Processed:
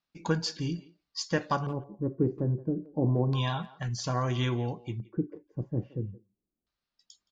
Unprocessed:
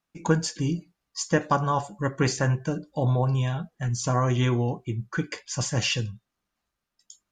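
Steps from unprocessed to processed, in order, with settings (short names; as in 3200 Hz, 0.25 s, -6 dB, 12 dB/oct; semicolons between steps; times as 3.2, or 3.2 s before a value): LFO low-pass square 0.3 Hz 360–4500 Hz; 2.92–3.83 graphic EQ 250/1000/4000/8000 Hz +4/+12/+8/-5 dB; speakerphone echo 0.17 s, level -18 dB; gain -6 dB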